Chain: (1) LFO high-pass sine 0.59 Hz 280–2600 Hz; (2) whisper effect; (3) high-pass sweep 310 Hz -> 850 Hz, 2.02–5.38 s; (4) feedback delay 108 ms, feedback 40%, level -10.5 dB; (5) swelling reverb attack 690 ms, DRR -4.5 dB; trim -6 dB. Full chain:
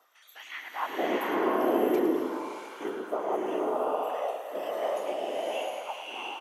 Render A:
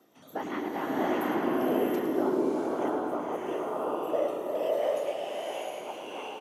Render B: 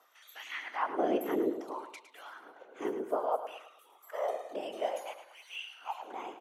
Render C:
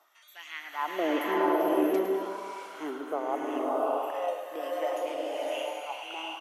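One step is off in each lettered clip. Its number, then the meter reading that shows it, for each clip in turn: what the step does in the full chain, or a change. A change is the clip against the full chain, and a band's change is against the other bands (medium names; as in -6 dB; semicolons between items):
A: 1, 250 Hz band +3.5 dB; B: 5, momentary loudness spread change +7 LU; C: 2, crest factor change -2.0 dB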